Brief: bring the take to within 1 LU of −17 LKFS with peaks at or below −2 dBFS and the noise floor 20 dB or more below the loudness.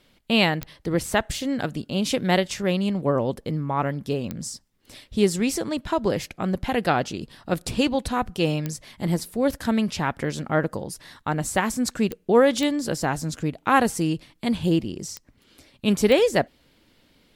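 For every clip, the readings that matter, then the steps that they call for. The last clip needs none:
number of clicks 7; integrated loudness −24.5 LKFS; sample peak −4.5 dBFS; target loudness −17.0 LKFS
→ click removal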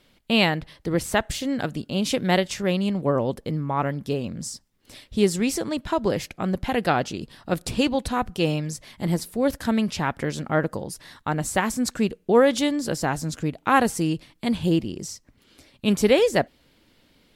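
number of clicks 0; integrated loudness −24.5 LKFS; sample peak −4.5 dBFS; target loudness −17.0 LKFS
→ level +7.5 dB
brickwall limiter −2 dBFS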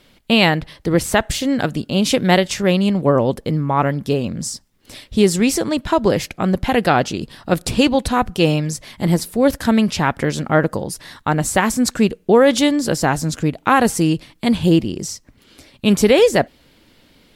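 integrated loudness −17.5 LKFS; sample peak −2.0 dBFS; background noise floor −54 dBFS

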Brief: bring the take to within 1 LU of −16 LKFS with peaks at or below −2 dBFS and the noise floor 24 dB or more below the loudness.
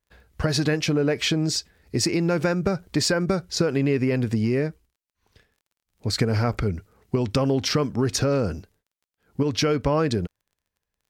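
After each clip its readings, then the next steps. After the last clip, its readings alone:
crackle rate 23 per second; integrated loudness −24.0 LKFS; sample peak −8.5 dBFS; target loudness −16.0 LKFS
→ click removal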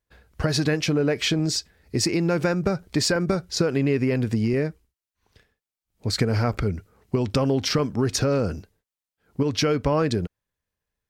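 crackle rate 0 per second; integrated loudness −24.0 LKFS; sample peak −8.5 dBFS; target loudness −16.0 LKFS
→ level +8 dB
brickwall limiter −2 dBFS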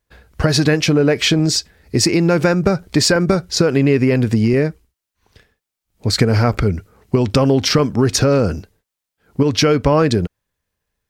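integrated loudness −16.0 LKFS; sample peak −2.0 dBFS; background noise floor −83 dBFS

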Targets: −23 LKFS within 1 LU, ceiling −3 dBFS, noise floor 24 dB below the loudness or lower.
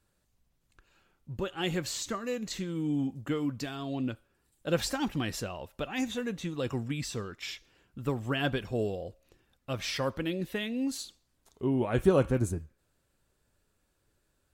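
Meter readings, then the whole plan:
integrated loudness −32.5 LKFS; sample peak −11.5 dBFS; target loudness −23.0 LKFS
→ level +9.5 dB
brickwall limiter −3 dBFS

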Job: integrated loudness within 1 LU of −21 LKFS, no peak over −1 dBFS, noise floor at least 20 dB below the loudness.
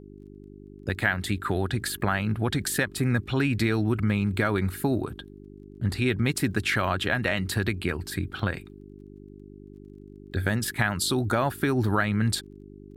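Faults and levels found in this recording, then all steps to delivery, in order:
crackle rate 15 per second; mains hum 50 Hz; hum harmonics up to 400 Hz; level of the hum −48 dBFS; integrated loudness −26.5 LKFS; sample peak −7.5 dBFS; target loudness −21.0 LKFS
→ click removal
hum removal 50 Hz, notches 8
level +5.5 dB

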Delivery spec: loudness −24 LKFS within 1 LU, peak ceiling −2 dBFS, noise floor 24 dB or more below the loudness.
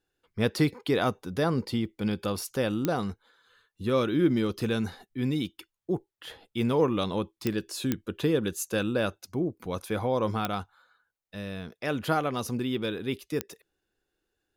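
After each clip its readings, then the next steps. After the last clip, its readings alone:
number of clicks 5; integrated loudness −29.5 LKFS; sample peak −12.0 dBFS; target loudness −24.0 LKFS
→ click removal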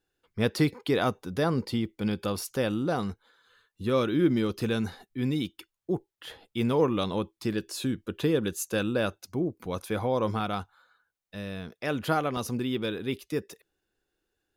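number of clicks 0; integrated loudness −29.5 LKFS; sample peak −12.5 dBFS; target loudness −24.0 LKFS
→ level +5.5 dB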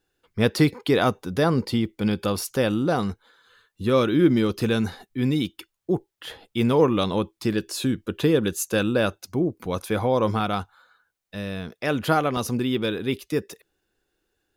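integrated loudness −24.0 LKFS; sample peak −7.0 dBFS; background noise floor −79 dBFS

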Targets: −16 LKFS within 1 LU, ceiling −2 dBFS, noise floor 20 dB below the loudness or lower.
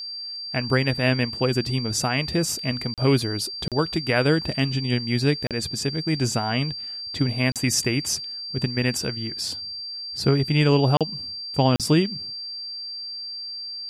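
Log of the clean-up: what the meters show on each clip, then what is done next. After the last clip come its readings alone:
number of dropouts 6; longest dropout 37 ms; interfering tone 4,700 Hz; level of the tone −31 dBFS; integrated loudness −24.0 LKFS; sample peak −6.0 dBFS; target loudness −16.0 LKFS
→ repair the gap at 0:02.94/0:03.68/0:05.47/0:07.52/0:10.97/0:11.76, 37 ms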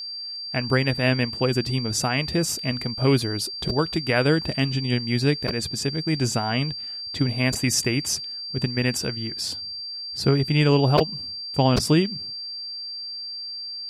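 number of dropouts 0; interfering tone 4,700 Hz; level of the tone −31 dBFS
→ notch filter 4,700 Hz, Q 30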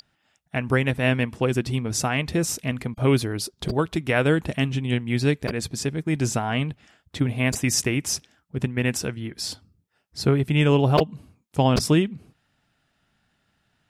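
interfering tone none found; integrated loudness −24.0 LKFS; sample peak −6.5 dBFS; target loudness −16.0 LKFS
→ level +8 dB
brickwall limiter −2 dBFS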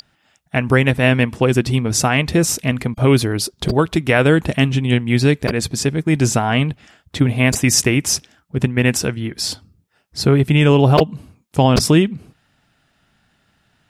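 integrated loudness −16.5 LKFS; sample peak −2.0 dBFS; background noise floor −63 dBFS

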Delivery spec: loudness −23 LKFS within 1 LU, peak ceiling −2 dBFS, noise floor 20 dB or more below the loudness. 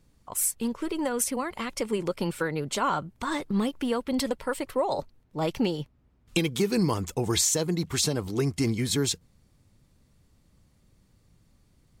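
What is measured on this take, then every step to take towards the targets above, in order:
integrated loudness −28.0 LKFS; sample peak −12.0 dBFS; target loudness −23.0 LKFS
→ level +5 dB

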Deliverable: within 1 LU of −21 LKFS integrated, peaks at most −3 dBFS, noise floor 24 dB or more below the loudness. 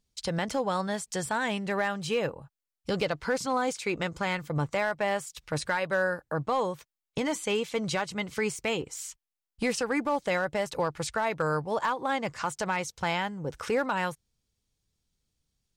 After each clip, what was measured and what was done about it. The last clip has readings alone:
share of clipped samples 0.4%; peaks flattened at −19.5 dBFS; integrated loudness −30.0 LKFS; sample peak −19.5 dBFS; target loudness −21.0 LKFS
→ clipped peaks rebuilt −19.5 dBFS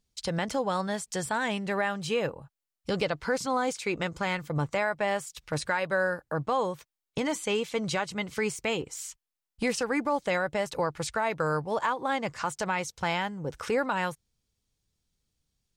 share of clipped samples 0.0%; integrated loudness −30.0 LKFS; sample peak −15.0 dBFS; target loudness −21.0 LKFS
→ level +9 dB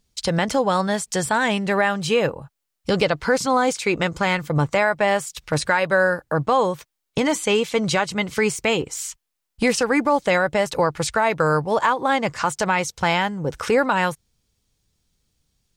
integrated loudness −21.0 LKFS; sample peak −6.0 dBFS; background noise floor −79 dBFS

